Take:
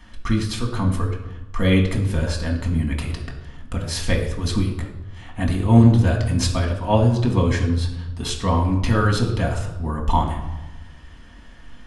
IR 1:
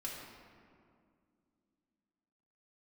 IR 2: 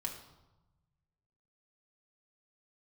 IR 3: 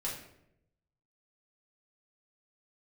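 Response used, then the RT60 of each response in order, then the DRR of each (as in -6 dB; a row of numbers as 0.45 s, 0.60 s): 2; 2.2 s, 1.0 s, 0.80 s; -4.5 dB, 0.0 dB, -5.5 dB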